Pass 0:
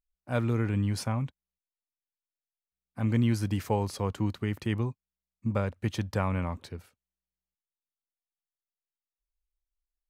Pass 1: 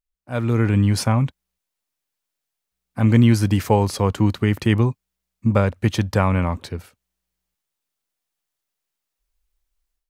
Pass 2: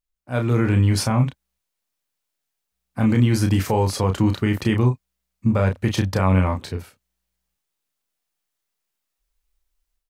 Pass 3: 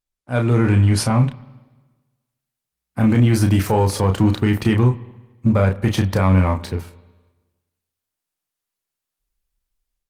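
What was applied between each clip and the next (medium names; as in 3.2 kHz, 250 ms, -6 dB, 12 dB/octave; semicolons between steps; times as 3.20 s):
level rider gain up to 13 dB
peak limiter -8.5 dBFS, peak gain reduction 6 dB; doubling 32 ms -5.5 dB
waveshaping leveller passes 1; spring tank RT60 1.3 s, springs 52/58 ms, chirp 35 ms, DRR 17.5 dB; Opus 32 kbps 48 kHz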